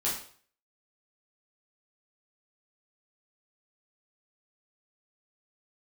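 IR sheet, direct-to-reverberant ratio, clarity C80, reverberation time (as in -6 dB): -7.0 dB, 9.0 dB, 0.50 s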